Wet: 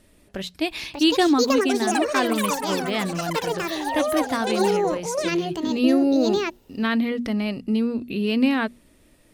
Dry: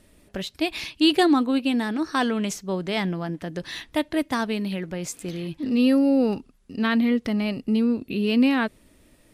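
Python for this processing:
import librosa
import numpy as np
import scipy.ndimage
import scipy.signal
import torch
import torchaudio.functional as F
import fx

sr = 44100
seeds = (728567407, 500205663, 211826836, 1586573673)

y = fx.hum_notches(x, sr, base_hz=60, count=4)
y = fx.echo_pitch(y, sr, ms=711, semitones=7, count=3, db_per_echo=-3.0)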